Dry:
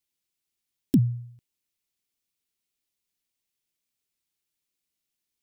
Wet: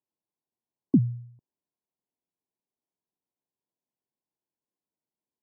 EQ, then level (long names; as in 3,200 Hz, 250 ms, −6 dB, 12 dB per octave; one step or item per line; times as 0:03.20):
Bessel high-pass filter 160 Hz
linear-phase brick-wall low-pass 1,100 Hz
+2.0 dB